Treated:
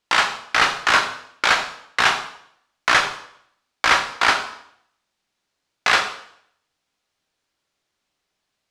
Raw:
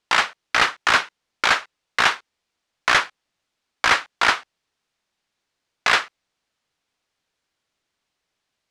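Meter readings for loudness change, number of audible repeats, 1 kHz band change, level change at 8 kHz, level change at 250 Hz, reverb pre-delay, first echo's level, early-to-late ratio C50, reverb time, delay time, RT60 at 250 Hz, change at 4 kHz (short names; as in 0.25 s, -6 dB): +1.0 dB, none, +1.5 dB, +2.0 dB, +2.0 dB, 6 ms, none, 8.5 dB, 0.65 s, none, 0.70 s, +1.5 dB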